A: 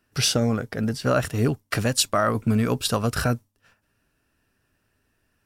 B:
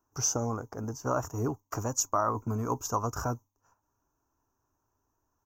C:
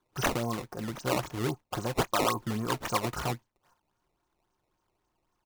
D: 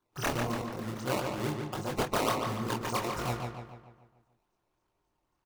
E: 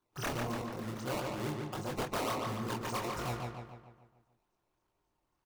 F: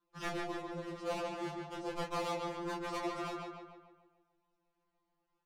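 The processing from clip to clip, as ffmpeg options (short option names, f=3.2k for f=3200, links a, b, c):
-af "firequalizer=gain_entry='entry(110,0);entry(190,-8);entry(300,3);entry(560,-2);entry(950,13);entry(1800,-15);entry(4000,-23);entry(6400,14);entry(9200,-29);entry(14000,5)':delay=0.05:min_phase=1,volume=-8.5dB"
-af "aecho=1:1:5.6:0.6,acrusher=samples=16:mix=1:aa=0.000001:lfo=1:lforange=25.6:lforate=3.7"
-filter_complex "[0:a]flanger=delay=20:depth=7.5:speed=1.6,asplit=2[a][b];[b]adelay=145,lowpass=f=4k:p=1,volume=-4dB,asplit=2[c][d];[d]adelay=145,lowpass=f=4k:p=1,volume=0.51,asplit=2[e][f];[f]adelay=145,lowpass=f=4k:p=1,volume=0.51,asplit=2[g][h];[h]adelay=145,lowpass=f=4k:p=1,volume=0.51,asplit=2[i][j];[j]adelay=145,lowpass=f=4k:p=1,volume=0.51,asplit=2[k][l];[l]adelay=145,lowpass=f=4k:p=1,volume=0.51,asplit=2[m][n];[n]adelay=145,lowpass=f=4k:p=1,volume=0.51[o];[c][e][g][i][k][m][o]amix=inputs=7:normalize=0[p];[a][p]amix=inputs=2:normalize=0"
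-af "asoftclip=type=tanh:threshold=-27dB,volume=-2dB"
-af "adynamicsmooth=sensitivity=4:basefreq=5.4k,afftfilt=real='re*2.83*eq(mod(b,8),0)':imag='im*2.83*eq(mod(b,8),0)':win_size=2048:overlap=0.75,volume=1dB"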